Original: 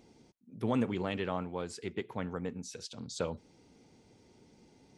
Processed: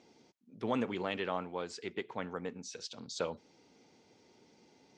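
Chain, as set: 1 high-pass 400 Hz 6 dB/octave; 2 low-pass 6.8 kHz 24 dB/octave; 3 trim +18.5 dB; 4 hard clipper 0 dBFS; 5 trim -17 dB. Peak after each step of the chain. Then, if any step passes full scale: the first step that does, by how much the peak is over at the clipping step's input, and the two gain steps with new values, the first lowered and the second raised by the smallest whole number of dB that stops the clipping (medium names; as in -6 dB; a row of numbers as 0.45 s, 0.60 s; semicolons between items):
-21.0 dBFS, -21.0 dBFS, -2.5 dBFS, -2.5 dBFS, -19.5 dBFS; nothing clips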